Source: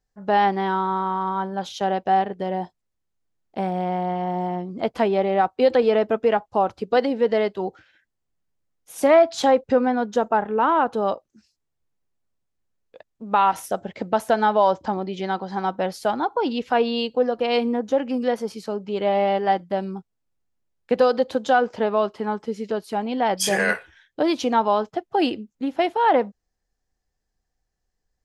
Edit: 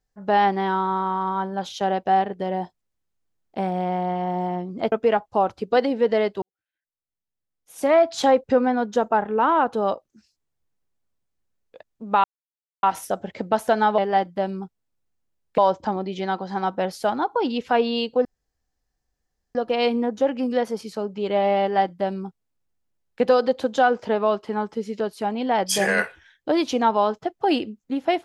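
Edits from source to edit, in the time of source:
0:04.92–0:06.12: remove
0:07.62–0:09.38: fade in quadratic
0:13.44: splice in silence 0.59 s
0:17.26: splice in room tone 1.30 s
0:19.32–0:20.92: duplicate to 0:14.59

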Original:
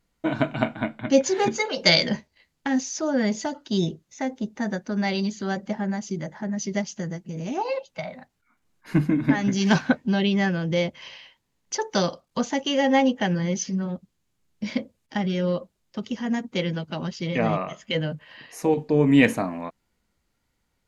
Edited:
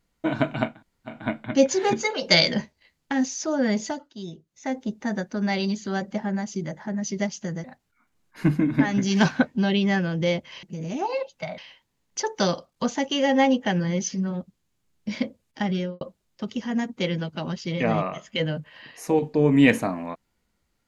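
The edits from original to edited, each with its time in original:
0:00.71: splice in room tone 0.45 s, crossfade 0.24 s
0:03.42–0:04.26: duck −13 dB, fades 0.24 s
0:07.19–0:08.14: move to 0:11.13
0:15.30–0:15.56: fade out and dull

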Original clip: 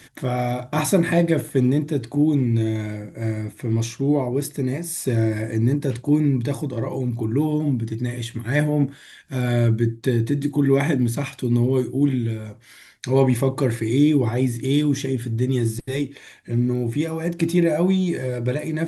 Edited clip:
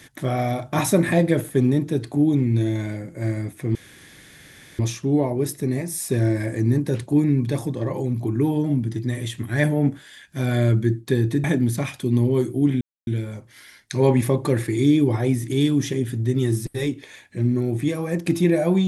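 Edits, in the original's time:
0:03.75: splice in room tone 1.04 s
0:10.40–0:10.83: remove
0:12.20: splice in silence 0.26 s

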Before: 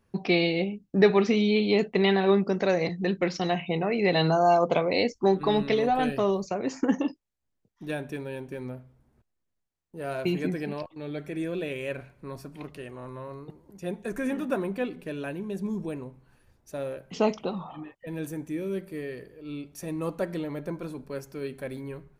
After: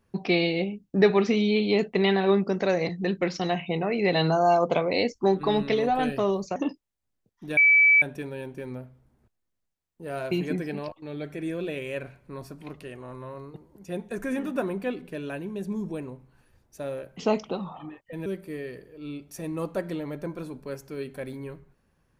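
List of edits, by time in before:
0:06.56–0:06.95: remove
0:07.96: insert tone 2,300 Hz −14 dBFS 0.45 s
0:18.20–0:18.70: remove

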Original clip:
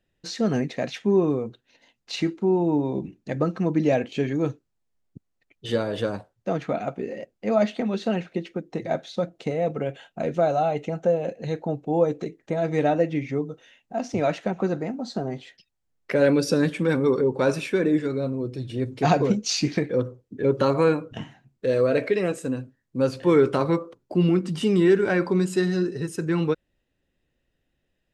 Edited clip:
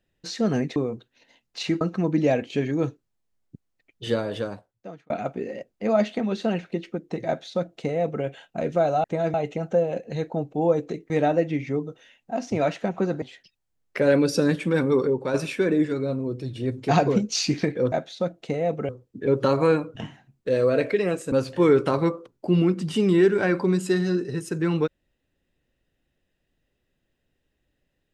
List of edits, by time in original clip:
0:00.76–0:01.29: remove
0:02.34–0:03.43: remove
0:05.76–0:06.72: fade out linear
0:08.89–0:09.86: duplicate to 0:20.06
0:12.42–0:12.72: move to 0:10.66
0:14.84–0:15.36: remove
0:17.17–0:17.48: fade out, to −6.5 dB
0:22.49–0:22.99: remove

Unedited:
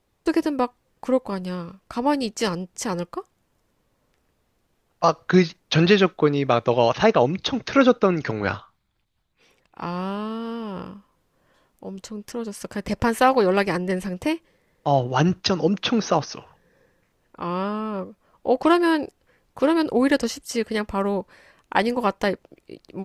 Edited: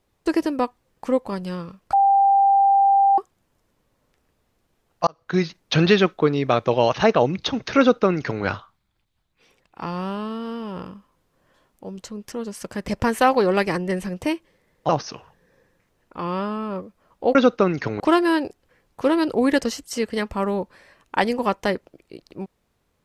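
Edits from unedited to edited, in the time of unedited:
0:01.93–0:03.18: beep over 791 Hz −12.5 dBFS
0:05.07–0:05.59: fade in
0:07.78–0:08.43: duplicate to 0:18.58
0:14.89–0:16.12: remove

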